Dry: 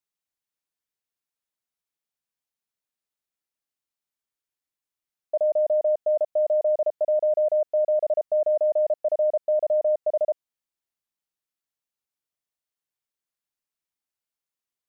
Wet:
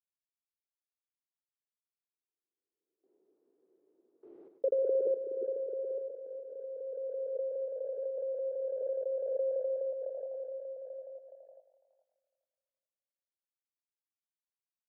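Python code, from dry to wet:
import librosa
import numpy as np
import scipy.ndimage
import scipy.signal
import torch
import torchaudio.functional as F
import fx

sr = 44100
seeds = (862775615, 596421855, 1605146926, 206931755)

y = fx.block_float(x, sr, bits=5)
y = fx.doppler_pass(y, sr, speed_mps=50, closest_m=4.8, pass_at_s=4.34)
y = fx.level_steps(y, sr, step_db=19)
y = fx.filter_sweep_lowpass(y, sr, from_hz=340.0, to_hz=690.0, start_s=6.4, end_s=7.82, q=2.3)
y = fx.echo_feedback(y, sr, ms=102, feedback_pct=31, wet_db=-9)
y = fx.filter_sweep_highpass(y, sr, from_hz=410.0, to_hz=830.0, start_s=8.97, end_s=10.83, q=4.0)
y = fx.echo_stepped(y, sr, ms=419, hz=280.0, octaves=0.7, feedback_pct=70, wet_db=-4)
y = fx.pre_swell(y, sr, db_per_s=26.0)
y = y * librosa.db_to_amplitude(7.5)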